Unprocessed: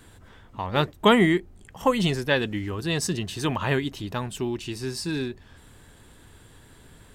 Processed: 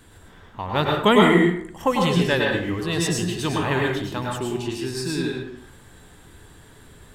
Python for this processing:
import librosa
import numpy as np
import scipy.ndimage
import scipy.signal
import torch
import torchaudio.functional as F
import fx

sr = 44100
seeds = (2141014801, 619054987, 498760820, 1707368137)

y = fx.rev_plate(x, sr, seeds[0], rt60_s=0.64, hf_ratio=0.6, predelay_ms=90, drr_db=-1.5)